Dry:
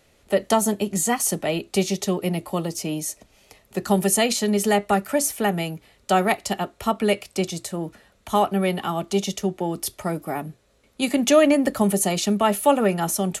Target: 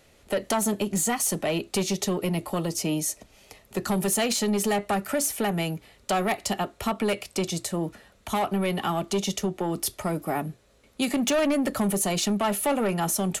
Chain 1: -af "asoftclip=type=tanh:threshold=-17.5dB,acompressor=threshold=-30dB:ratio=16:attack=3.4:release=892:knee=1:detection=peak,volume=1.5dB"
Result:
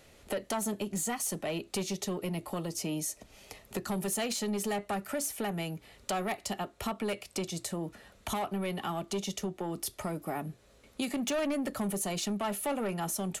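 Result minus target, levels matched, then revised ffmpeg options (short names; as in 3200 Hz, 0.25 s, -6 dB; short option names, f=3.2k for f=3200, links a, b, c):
compressor: peak gain reduction +8 dB
-af "asoftclip=type=tanh:threshold=-17.5dB,acompressor=threshold=-21.5dB:ratio=16:attack=3.4:release=892:knee=1:detection=peak,volume=1.5dB"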